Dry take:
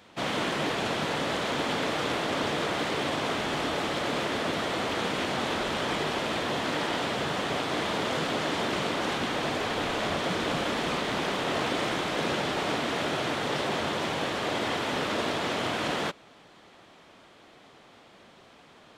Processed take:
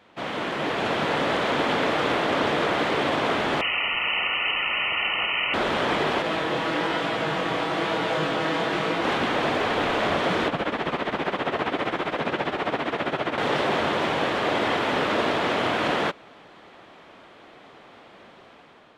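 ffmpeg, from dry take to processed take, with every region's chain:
ffmpeg -i in.wav -filter_complex "[0:a]asettb=1/sr,asplit=3[link_01][link_02][link_03];[link_01]atrim=end=3.614[link_04];[link_02]atrim=start=3.61:end=5.54,asetpts=PTS-STARTPTS,afade=type=in:duration=0.004:curve=qsin,afade=type=out:start_time=1.926:duration=0.004:curve=qsin,lowpass=frequency=2700:width_type=q:width=0.5098,lowpass=frequency=2700:width_type=q:width=0.6013,lowpass=frequency=2700:width_type=q:width=0.9,lowpass=frequency=2700:width_type=q:width=2.563,afreqshift=-3200,asuperstop=centerf=1600:order=20:qfactor=6.4[link_05];[link_03]atrim=start=5.536[link_06];[link_04][link_05]acrossfade=duration=0.004:curve1=hsin:curve2=qsin[link_07];[link_07][link_06]acrossfade=duration=0.004:curve1=qsin:curve2=hsin,asettb=1/sr,asplit=3[link_08][link_09][link_10];[link_08]atrim=end=6.224[link_11];[link_09]atrim=start=6.22:end=9.05,asetpts=PTS-STARTPTS,afade=type=in:duration=0.004:curve=qsin,afade=type=out:start_time=2.826:duration=0.004:curve=qsin,aecho=1:1:6.2:0.57,atrim=end_sample=124803,flanger=delay=17.5:depth=6.8:speed=1.1[link_12];[link_10]atrim=start=9.046[link_13];[link_11][link_12]acrossfade=duration=0.004:curve1=hsin:curve2=qsin[link_14];[link_14][link_13]acrossfade=duration=0.004:curve1=qsin:curve2=hsin,asettb=1/sr,asplit=3[link_15][link_16][link_17];[link_15]atrim=end=10.484[link_18];[link_16]atrim=start=10.48:end=13.38,asetpts=PTS-STARTPTS,afade=type=in:duration=0.004:curve=qsin,afade=type=out:start_time=2.896:duration=0.004:curve=qsin,tremolo=f=15:d=0.76,acrossover=split=3500[link_19][link_20];[link_20]acompressor=threshold=-49dB:ratio=4:attack=1:release=60[link_21];[link_19][link_21]amix=inputs=2:normalize=0[link_22];[link_17]atrim=start=13.376[link_23];[link_18][link_22]acrossfade=duration=0.004:curve1=hsin:curve2=qsin[link_24];[link_24][link_23]acrossfade=duration=0.004:curve1=qsin:curve2=hsin,bass=frequency=250:gain=-4,treble=frequency=4000:gain=-11,dynaudnorm=framelen=290:gausssize=5:maxgain=6.5dB" out.wav

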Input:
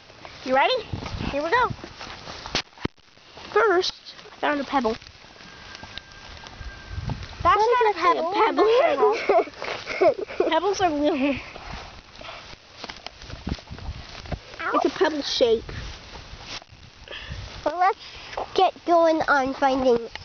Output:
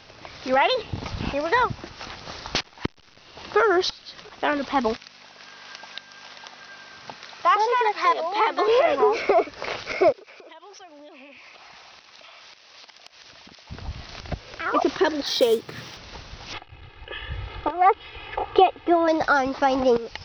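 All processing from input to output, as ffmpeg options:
ffmpeg -i in.wav -filter_complex "[0:a]asettb=1/sr,asplit=3[link_01][link_02][link_03];[link_01]atrim=end=4.964[link_04];[link_02]atrim=start=4.96:end=8.68,asetpts=PTS-STARTPTS,afade=type=in:duration=0.004:curve=qsin,afade=type=out:start_time=3.716:duration=0.004:curve=qsin,aeval=exprs='val(0)+0.0141*(sin(2*PI*50*n/s)+sin(2*PI*2*50*n/s)/2+sin(2*PI*3*50*n/s)/3+sin(2*PI*4*50*n/s)/4+sin(2*PI*5*50*n/s)/5)':channel_layout=same,highpass=530[link_05];[link_03]atrim=start=8.676[link_06];[link_04][link_05]acrossfade=duration=0.004:curve1=hsin:curve2=qsin[link_07];[link_07][link_06]acrossfade=duration=0.004:curve1=qsin:curve2=hsin,asettb=1/sr,asplit=3[link_08][link_09][link_10];[link_08]atrim=end=10.124[link_11];[link_09]atrim=start=10.12:end=13.7,asetpts=PTS-STARTPTS,afade=type=in:duration=0.004:curve=qsin,afade=type=out:start_time=3.576:duration=0.004:curve=qsin,highpass=frequency=1000:poles=1,acompressor=threshold=-42dB:ratio=10:attack=3.2:release=140:knee=1:detection=peak,bandreject=frequency=1400:width=20[link_12];[link_10]atrim=start=13.696[link_13];[link_11][link_12]acrossfade=duration=0.004:curve1=hsin:curve2=qsin[link_14];[link_14][link_13]acrossfade=duration=0.004:curve1=qsin:curve2=hsin,asettb=1/sr,asplit=3[link_15][link_16][link_17];[link_15]atrim=end=15.264[link_18];[link_16]atrim=start=15.26:end=15.97,asetpts=PTS-STARTPTS,afade=type=in:duration=0.004:curve=qsin,afade=type=out:start_time=0.706:duration=0.004:curve=qsin,highpass=frequency=130:width=0.5412,highpass=frequency=130:width=1.3066,bandreject=frequency=1500:width=27,acrusher=bits=5:mode=log:mix=0:aa=0.000001[link_19];[link_17]atrim=start=15.966[link_20];[link_18][link_19]acrossfade=duration=0.004:curve1=hsin:curve2=qsin[link_21];[link_21][link_20]acrossfade=duration=0.004:curve1=qsin:curve2=hsin,asettb=1/sr,asplit=3[link_22][link_23][link_24];[link_22]atrim=end=16.534[link_25];[link_23]atrim=start=16.53:end=19.08,asetpts=PTS-STARTPTS,afade=type=in:duration=0.004:curve=qsin,afade=type=out:start_time=2.546:duration=0.004:curve=qsin,lowpass=frequency=3200:width=0.5412,lowpass=frequency=3200:width=1.3066,aecho=1:1:2.4:0.82,atrim=end_sample=112455[link_26];[link_24]atrim=start=19.076[link_27];[link_25][link_26]acrossfade=duration=0.004:curve1=hsin:curve2=qsin[link_28];[link_28][link_27]acrossfade=duration=0.004:curve1=qsin:curve2=hsin" out.wav

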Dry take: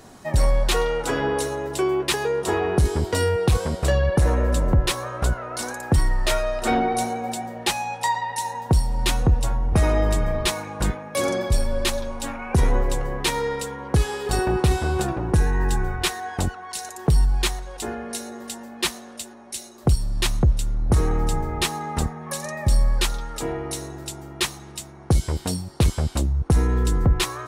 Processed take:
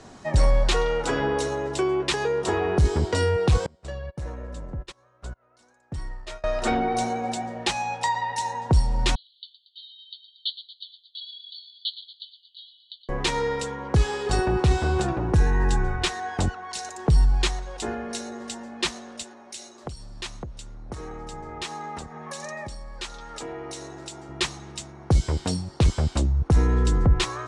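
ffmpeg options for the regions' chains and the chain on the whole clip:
ffmpeg -i in.wav -filter_complex "[0:a]asettb=1/sr,asplit=3[link_01][link_02][link_03];[link_01]atrim=end=3.664[link_04];[link_02]atrim=start=3.66:end=6.44,asetpts=PTS-STARTPTS,afade=type=in:duration=0.004:curve=qsin,afade=type=out:start_time=2.776:duration=0.004:curve=qsin,agate=range=-30dB:threshold=-20dB:ratio=16:release=100:detection=peak,acompressor=threshold=-42dB:ratio=2:attack=3.2:release=140:knee=1:detection=peak[link_05];[link_03]atrim=start=6.436[link_06];[link_04][link_05]acrossfade=duration=0.004:curve1=hsin:curve2=qsin[link_07];[link_07][link_06]acrossfade=duration=0.004:curve1=qsin:curve2=hsin,asettb=1/sr,asplit=3[link_08][link_09][link_10];[link_08]atrim=end=9.154[link_11];[link_09]atrim=start=9.15:end=13.09,asetpts=PTS-STARTPTS,afade=type=in:duration=0.004:curve=qsin,afade=type=out:start_time=3.936:duration=0.004:curve=qsin,asuperpass=centerf=3700:order=20:qfactor=2.4,asplit=8[link_12][link_13][link_14][link_15][link_16][link_17][link_18][link_19];[link_13]adelay=116,afreqshift=43,volume=-13dB[link_20];[link_14]adelay=232,afreqshift=86,volume=-17.4dB[link_21];[link_15]adelay=348,afreqshift=129,volume=-21.9dB[link_22];[link_16]adelay=464,afreqshift=172,volume=-26.3dB[link_23];[link_17]adelay=580,afreqshift=215,volume=-30.7dB[link_24];[link_18]adelay=696,afreqshift=258,volume=-35.2dB[link_25];[link_19]adelay=812,afreqshift=301,volume=-39.6dB[link_26];[link_12][link_20][link_21][link_22][link_23][link_24][link_25][link_26]amix=inputs=8:normalize=0,atrim=end_sample=173754[link_27];[link_10]atrim=start=13.086[link_28];[link_11][link_27]acrossfade=duration=0.004:curve1=hsin:curve2=qsin[link_29];[link_29][link_28]acrossfade=duration=0.004:curve1=qsin:curve2=hsin,asettb=1/sr,asplit=3[link_30][link_31][link_32];[link_30]atrim=end=19.234[link_33];[link_31]atrim=start=19.23:end=24.29,asetpts=PTS-STARTPTS,afade=type=in:duration=0.004:curve=qsin,afade=type=out:start_time=5.056:duration=0.004:curve=qsin,acompressor=threshold=-31dB:ratio=2.5:attack=3.2:release=140:knee=1:detection=peak,lowshelf=frequency=180:gain=-11.5[link_34];[link_32]atrim=start=24.286[link_35];[link_33][link_34]acrossfade=duration=0.004:curve1=hsin:curve2=qsin[link_36];[link_36][link_35]acrossfade=duration=0.004:curve1=qsin:curve2=hsin,lowpass=frequency=7800:width=0.5412,lowpass=frequency=7800:width=1.3066,acrossover=split=140[link_37][link_38];[link_38]acompressor=threshold=-20dB:ratio=6[link_39];[link_37][link_39]amix=inputs=2:normalize=0" out.wav

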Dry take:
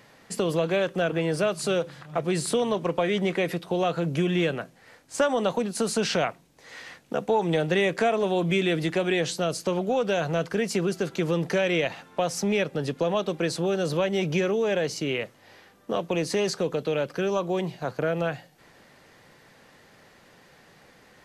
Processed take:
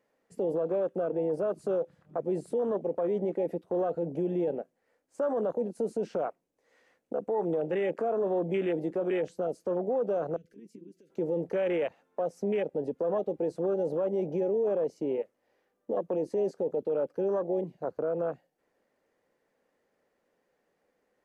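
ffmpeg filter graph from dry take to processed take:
ffmpeg -i in.wav -filter_complex "[0:a]asettb=1/sr,asplit=3[link_01][link_02][link_03];[link_01]atrim=end=10.364[link_04];[link_02]atrim=start=10.36:end=11.1,asetpts=PTS-STARTPTS,afade=type=in:duration=0.004:curve=qsin,afade=type=out:start_time=0.736:duration=0.004:curve=qsin,asuperstop=centerf=930:order=4:qfactor=0.58,acompressor=threshold=-36dB:ratio=12:attack=3.2:release=140:knee=1:detection=peak[link_05];[link_03]atrim=start=11.096[link_06];[link_04][link_05]acrossfade=duration=0.004:curve1=hsin:curve2=qsin[link_07];[link_07][link_06]acrossfade=duration=0.004:curve1=qsin:curve2=hsin,afwtdn=0.0447,equalizer=frequency=125:width_type=o:width=1:gain=-9,equalizer=frequency=250:width_type=o:width=1:gain=4,equalizer=frequency=500:width_type=o:width=1:gain=9,equalizer=frequency=4000:width_type=o:width=1:gain=-6,alimiter=limit=-14.5dB:level=0:latency=1:release=13,volume=-7.5dB" out.wav

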